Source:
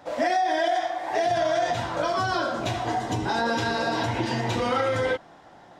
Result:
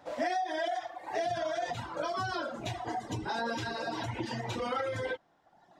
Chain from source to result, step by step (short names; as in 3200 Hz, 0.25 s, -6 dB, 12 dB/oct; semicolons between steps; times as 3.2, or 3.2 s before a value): reverb removal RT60 1.3 s; gain -7 dB